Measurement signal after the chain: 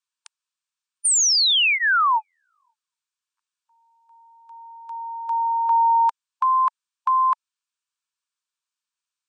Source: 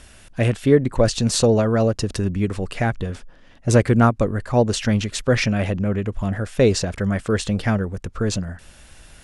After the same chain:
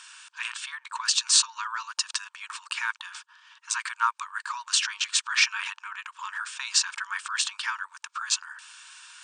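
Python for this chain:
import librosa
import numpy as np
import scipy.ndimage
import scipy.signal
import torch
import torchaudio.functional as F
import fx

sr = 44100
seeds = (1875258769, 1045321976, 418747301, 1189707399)

p1 = fx.notch(x, sr, hz=2000.0, q=5.6)
p2 = fx.over_compress(p1, sr, threshold_db=-21.0, ratio=-0.5)
p3 = p1 + (p2 * librosa.db_to_amplitude(-2.0))
p4 = fx.brickwall_bandpass(p3, sr, low_hz=890.0, high_hz=9200.0)
y = p4 * librosa.db_to_amplitude(-2.5)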